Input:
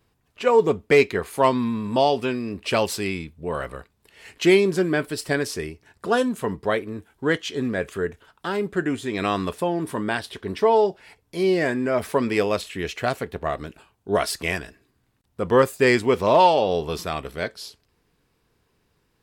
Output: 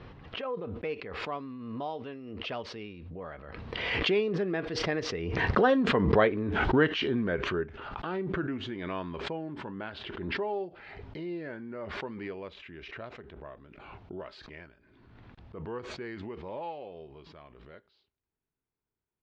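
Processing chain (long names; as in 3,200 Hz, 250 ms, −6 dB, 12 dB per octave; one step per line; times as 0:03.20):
source passing by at 0:06.29, 28 m/s, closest 19 metres
Bessel low-pass filter 2,600 Hz, order 6
background raised ahead of every attack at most 32 dB per second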